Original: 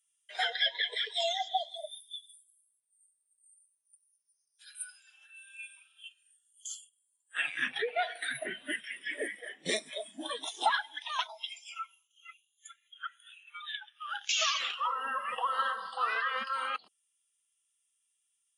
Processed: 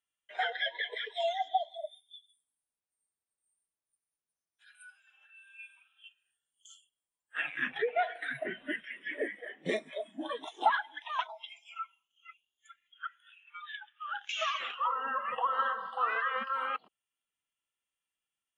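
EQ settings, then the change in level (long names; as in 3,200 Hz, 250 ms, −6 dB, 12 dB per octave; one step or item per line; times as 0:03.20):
head-to-tape spacing loss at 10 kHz 24 dB
parametric band 4,700 Hz −14 dB 0.53 octaves
+4.0 dB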